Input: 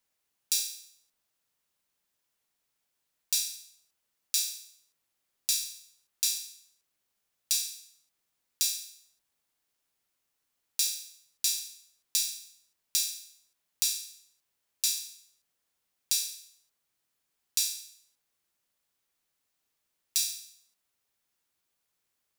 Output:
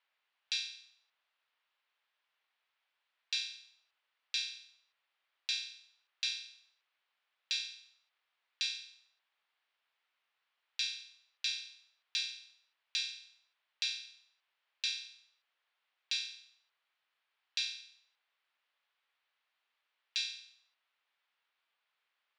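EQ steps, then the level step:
high-pass filter 910 Hz 12 dB per octave
low-pass filter 3,500 Hz 24 dB per octave
+5.5 dB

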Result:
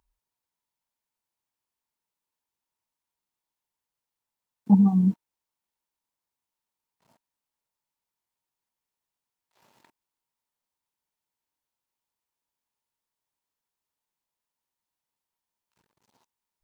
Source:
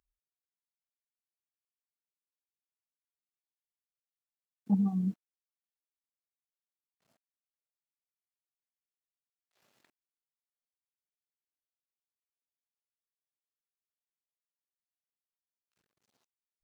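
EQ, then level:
low-shelf EQ 470 Hz +4.5 dB
parametric band 930 Hz +12 dB 0.31 octaves
+6.0 dB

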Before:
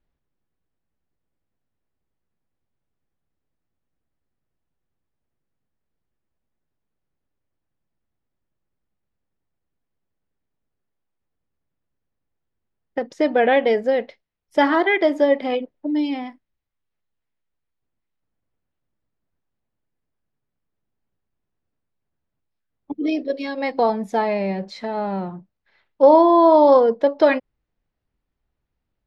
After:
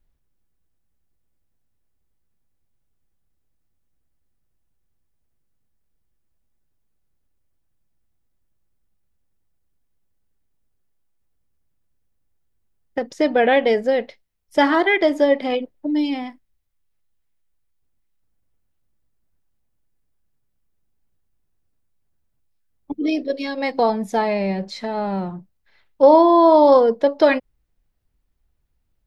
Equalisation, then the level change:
low-shelf EQ 89 Hz +11.5 dB
high-shelf EQ 4,600 Hz +9.5 dB
0.0 dB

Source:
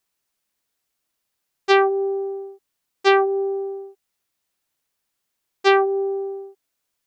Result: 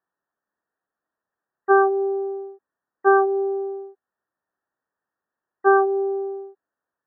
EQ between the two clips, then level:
high-pass filter 270 Hz 6 dB per octave
linear-phase brick-wall low-pass 1,900 Hz
+1.5 dB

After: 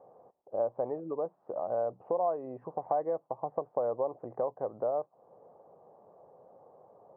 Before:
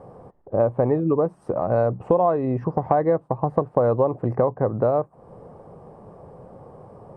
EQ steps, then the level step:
resonant band-pass 680 Hz, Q 1.6
high-frequency loss of the air 140 metres
−8.5 dB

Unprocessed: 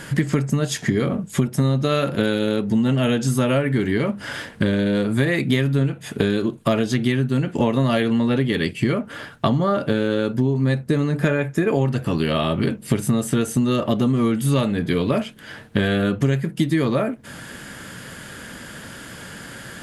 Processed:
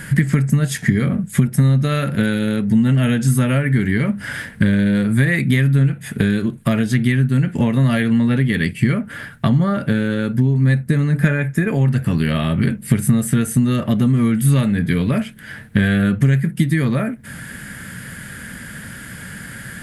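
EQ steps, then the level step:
flat-topped bell 600 Hz −10.5 dB 2.4 octaves
flat-topped bell 4,300 Hz −8.5 dB
+6.5 dB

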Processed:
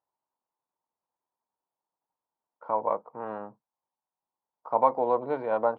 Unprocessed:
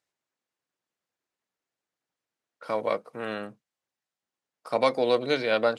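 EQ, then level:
low-pass with resonance 930 Hz, resonance Q 6.2
−6.0 dB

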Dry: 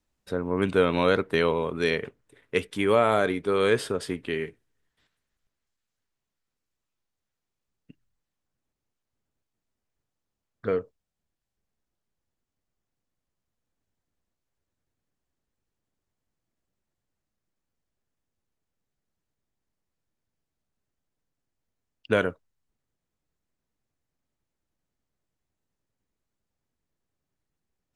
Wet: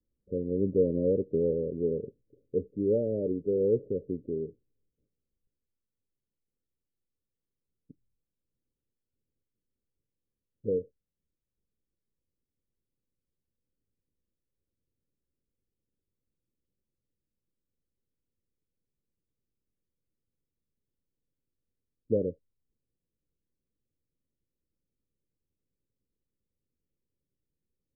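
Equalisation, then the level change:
Butterworth low-pass 560 Hz 96 dB per octave
−2.5 dB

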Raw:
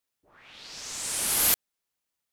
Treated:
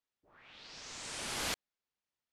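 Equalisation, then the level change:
high-frequency loss of the air 100 metres
−5.0 dB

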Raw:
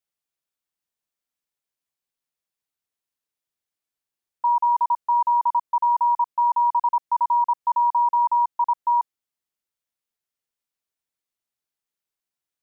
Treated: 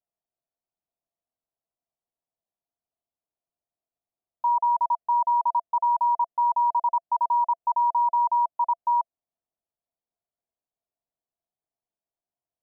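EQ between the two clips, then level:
low-pass filter 1,100 Hz 24 dB per octave
high-frequency loss of the air 480 metres
parametric band 680 Hz +12.5 dB 0.25 octaves
0.0 dB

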